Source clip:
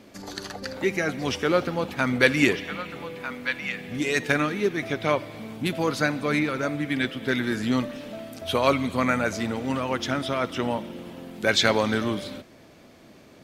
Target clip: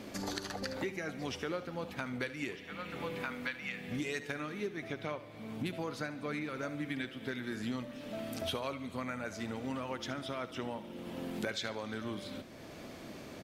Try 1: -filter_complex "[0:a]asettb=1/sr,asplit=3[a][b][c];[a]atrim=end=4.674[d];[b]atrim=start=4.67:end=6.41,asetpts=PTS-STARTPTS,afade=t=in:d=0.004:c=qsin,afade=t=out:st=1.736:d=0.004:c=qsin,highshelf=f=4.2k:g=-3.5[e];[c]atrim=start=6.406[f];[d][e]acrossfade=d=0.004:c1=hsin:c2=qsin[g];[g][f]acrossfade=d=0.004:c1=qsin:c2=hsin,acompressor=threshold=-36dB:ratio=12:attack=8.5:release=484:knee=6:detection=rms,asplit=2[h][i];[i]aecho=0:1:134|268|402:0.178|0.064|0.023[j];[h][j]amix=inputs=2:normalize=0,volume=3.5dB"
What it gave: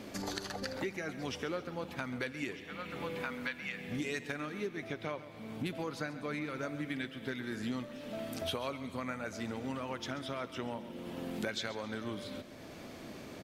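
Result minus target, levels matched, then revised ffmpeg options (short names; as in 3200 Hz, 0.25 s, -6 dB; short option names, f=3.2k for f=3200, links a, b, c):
echo 62 ms late
-filter_complex "[0:a]asettb=1/sr,asplit=3[a][b][c];[a]atrim=end=4.674[d];[b]atrim=start=4.67:end=6.41,asetpts=PTS-STARTPTS,afade=t=in:d=0.004:c=qsin,afade=t=out:st=1.736:d=0.004:c=qsin,highshelf=f=4.2k:g=-3.5[e];[c]atrim=start=6.406[f];[d][e]acrossfade=d=0.004:c1=hsin:c2=qsin[g];[g][f]acrossfade=d=0.004:c1=qsin:c2=hsin,acompressor=threshold=-36dB:ratio=12:attack=8.5:release=484:knee=6:detection=rms,asplit=2[h][i];[i]aecho=0:1:72|144|216:0.178|0.064|0.023[j];[h][j]amix=inputs=2:normalize=0,volume=3.5dB"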